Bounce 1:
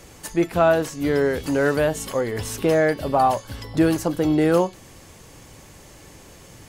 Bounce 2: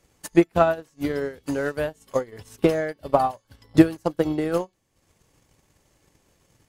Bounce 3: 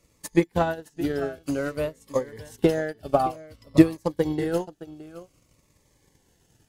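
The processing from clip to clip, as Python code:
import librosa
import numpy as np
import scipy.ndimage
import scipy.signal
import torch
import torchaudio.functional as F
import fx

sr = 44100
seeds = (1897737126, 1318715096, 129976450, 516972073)

y1 = fx.transient(x, sr, attack_db=10, sustain_db=-9)
y1 = fx.upward_expand(y1, sr, threshold_db=-36.0, expansion=1.5)
y1 = y1 * 10.0 ** (-2.5 / 20.0)
y2 = y1 + 10.0 ** (-16.5 / 20.0) * np.pad(y1, (int(617 * sr / 1000.0), 0))[:len(y1)]
y2 = fx.notch_cascade(y2, sr, direction='falling', hz=0.54)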